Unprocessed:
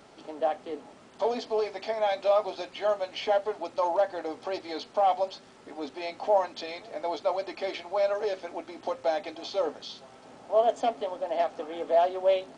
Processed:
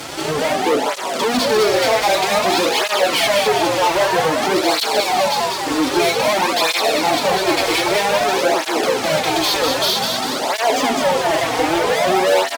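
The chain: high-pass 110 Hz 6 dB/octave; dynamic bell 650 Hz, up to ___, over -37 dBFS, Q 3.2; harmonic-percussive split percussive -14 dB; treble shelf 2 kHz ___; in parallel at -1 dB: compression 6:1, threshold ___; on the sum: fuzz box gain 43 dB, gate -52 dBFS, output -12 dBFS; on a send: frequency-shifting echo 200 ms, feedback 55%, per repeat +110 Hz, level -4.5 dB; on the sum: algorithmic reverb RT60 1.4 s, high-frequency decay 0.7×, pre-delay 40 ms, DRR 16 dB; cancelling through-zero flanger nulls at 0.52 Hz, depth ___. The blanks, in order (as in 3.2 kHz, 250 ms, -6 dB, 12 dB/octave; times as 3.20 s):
-6 dB, +8 dB, -41 dBFS, 5.2 ms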